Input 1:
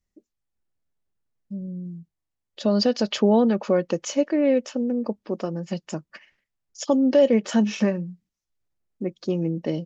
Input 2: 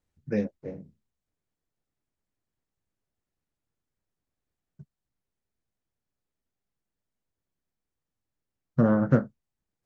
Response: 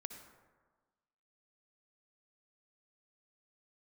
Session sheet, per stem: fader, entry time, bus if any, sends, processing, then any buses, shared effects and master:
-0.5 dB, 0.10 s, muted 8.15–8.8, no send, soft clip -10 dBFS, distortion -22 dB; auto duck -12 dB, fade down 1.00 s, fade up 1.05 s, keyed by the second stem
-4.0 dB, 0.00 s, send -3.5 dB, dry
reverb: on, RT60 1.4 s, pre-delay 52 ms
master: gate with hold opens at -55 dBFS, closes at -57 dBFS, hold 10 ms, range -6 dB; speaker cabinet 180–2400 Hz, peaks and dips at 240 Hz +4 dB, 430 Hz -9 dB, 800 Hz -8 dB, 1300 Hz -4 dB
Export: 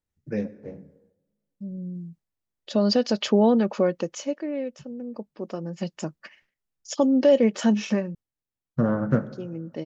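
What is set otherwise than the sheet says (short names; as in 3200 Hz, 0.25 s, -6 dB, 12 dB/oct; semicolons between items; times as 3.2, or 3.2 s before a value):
stem 1: missing soft clip -10 dBFS, distortion -22 dB; master: missing speaker cabinet 180–2400 Hz, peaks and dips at 240 Hz +4 dB, 430 Hz -9 dB, 800 Hz -8 dB, 1300 Hz -4 dB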